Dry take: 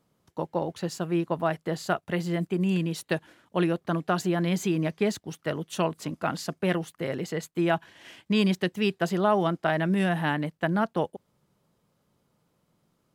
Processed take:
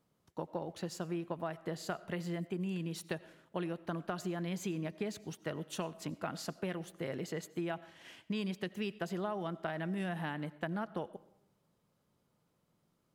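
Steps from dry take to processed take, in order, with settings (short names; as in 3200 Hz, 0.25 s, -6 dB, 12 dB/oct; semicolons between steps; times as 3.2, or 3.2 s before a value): compressor, threshold -28 dBFS, peak gain reduction 10.5 dB; on a send: reverb RT60 0.75 s, pre-delay 50 ms, DRR 18 dB; on the sum: gain -6 dB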